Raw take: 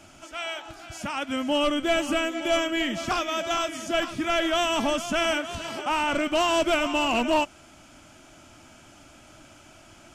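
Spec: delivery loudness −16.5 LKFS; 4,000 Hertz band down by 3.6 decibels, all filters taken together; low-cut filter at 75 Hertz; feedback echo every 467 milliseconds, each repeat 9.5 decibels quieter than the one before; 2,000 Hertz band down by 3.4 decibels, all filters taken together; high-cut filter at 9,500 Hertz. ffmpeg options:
ffmpeg -i in.wav -af "highpass=75,lowpass=9500,equalizer=frequency=2000:width_type=o:gain=-3.5,equalizer=frequency=4000:width_type=o:gain=-3.5,aecho=1:1:467|934|1401|1868:0.335|0.111|0.0365|0.012,volume=10dB" out.wav

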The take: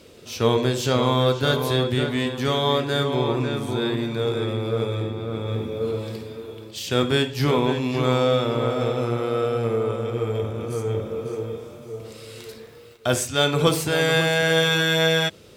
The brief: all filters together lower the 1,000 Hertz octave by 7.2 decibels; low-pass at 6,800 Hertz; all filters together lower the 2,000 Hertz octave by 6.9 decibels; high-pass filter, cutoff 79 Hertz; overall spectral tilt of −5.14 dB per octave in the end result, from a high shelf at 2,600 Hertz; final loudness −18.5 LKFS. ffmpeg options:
ffmpeg -i in.wav -af "highpass=79,lowpass=6800,equalizer=frequency=1000:width_type=o:gain=-7.5,equalizer=frequency=2000:width_type=o:gain=-5,highshelf=frequency=2600:gain=-3,volume=6.5dB" out.wav

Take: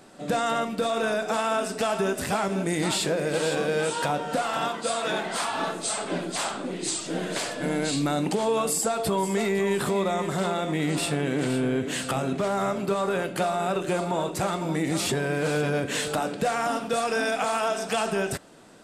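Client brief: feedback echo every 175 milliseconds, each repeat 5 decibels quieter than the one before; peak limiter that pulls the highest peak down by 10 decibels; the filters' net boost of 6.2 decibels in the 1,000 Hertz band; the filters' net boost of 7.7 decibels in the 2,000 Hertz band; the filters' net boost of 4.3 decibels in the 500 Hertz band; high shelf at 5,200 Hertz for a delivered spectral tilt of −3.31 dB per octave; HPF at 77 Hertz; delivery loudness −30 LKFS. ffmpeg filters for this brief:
ffmpeg -i in.wav -af "highpass=77,equalizer=frequency=500:width_type=o:gain=3.5,equalizer=frequency=1000:width_type=o:gain=5,equalizer=frequency=2000:width_type=o:gain=7.5,highshelf=frequency=5200:gain=5.5,alimiter=limit=-17dB:level=0:latency=1,aecho=1:1:175|350|525|700|875|1050|1225:0.562|0.315|0.176|0.0988|0.0553|0.031|0.0173,volume=-5.5dB" out.wav

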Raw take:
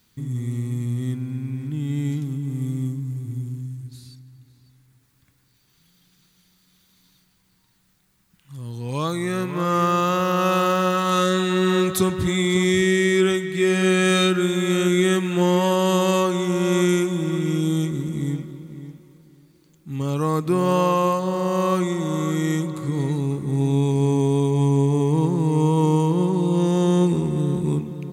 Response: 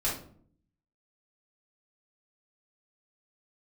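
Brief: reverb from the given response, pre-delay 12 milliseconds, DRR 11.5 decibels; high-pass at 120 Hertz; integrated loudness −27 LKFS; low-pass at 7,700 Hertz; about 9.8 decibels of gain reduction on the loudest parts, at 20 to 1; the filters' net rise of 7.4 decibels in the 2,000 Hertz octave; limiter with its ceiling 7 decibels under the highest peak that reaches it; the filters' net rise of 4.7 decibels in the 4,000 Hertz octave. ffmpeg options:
-filter_complex "[0:a]highpass=120,lowpass=7700,equalizer=frequency=2000:width_type=o:gain=8,equalizer=frequency=4000:width_type=o:gain=3,acompressor=threshold=-23dB:ratio=20,alimiter=limit=-21.5dB:level=0:latency=1,asplit=2[link_01][link_02];[1:a]atrim=start_sample=2205,adelay=12[link_03];[link_02][link_03]afir=irnorm=-1:irlink=0,volume=-19dB[link_04];[link_01][link_04]amix=inputs=2:normalize=0,volume=3dB"

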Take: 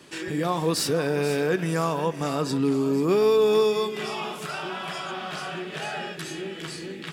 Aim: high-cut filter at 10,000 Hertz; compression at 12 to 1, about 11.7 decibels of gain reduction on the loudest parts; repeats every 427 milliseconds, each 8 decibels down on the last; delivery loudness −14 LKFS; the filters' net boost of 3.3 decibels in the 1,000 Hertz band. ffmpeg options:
ffmpeg -i in.wav -af "lowpass=10000,equalizer=frequency=1000:width_type=o:gain=4,acompressor=threshold=-28dB:ratio=12,aecho=1:1:427|854|1281|1708|2135:0.398|0.159|0.0637|0.0255|0.0102,volume=17.5dB" out.wav

